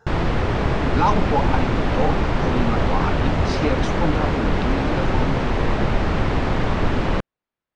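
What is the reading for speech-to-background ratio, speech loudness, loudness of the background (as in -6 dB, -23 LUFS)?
-5.0 dB, -27.0 LUFS, -22.0 LUFS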